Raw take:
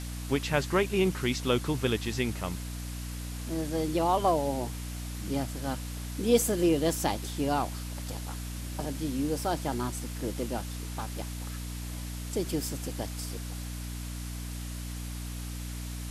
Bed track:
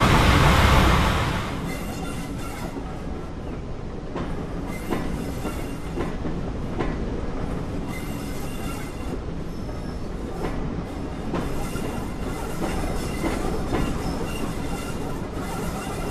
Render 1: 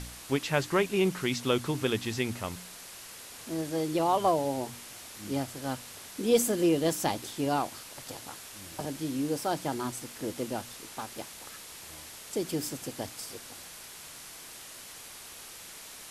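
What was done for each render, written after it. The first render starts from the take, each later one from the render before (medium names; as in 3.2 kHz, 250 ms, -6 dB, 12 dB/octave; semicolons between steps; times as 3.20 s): de-hum 60 Hz, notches 5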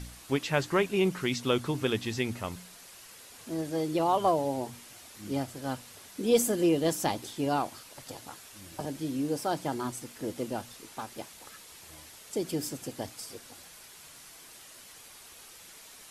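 noise reduction 6 dB, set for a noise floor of -47 dBFS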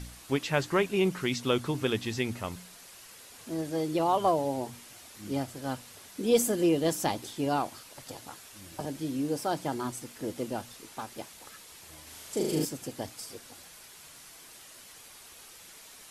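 12.03–12.65 s: flutter echo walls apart 6.6 m, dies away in 1 s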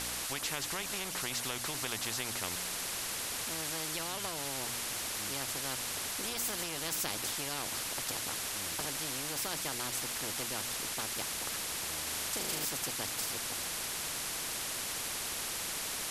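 compression, threshold -28 dBFS, peak gain reduction 10.5 dB; spectrum-flattening compressor 4:1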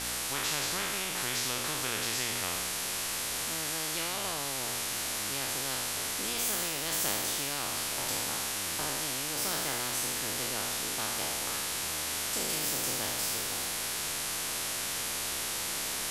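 spectral sustain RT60 1.89 s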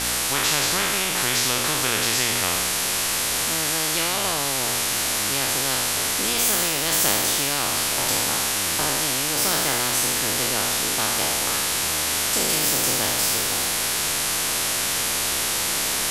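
trim +10.5 dB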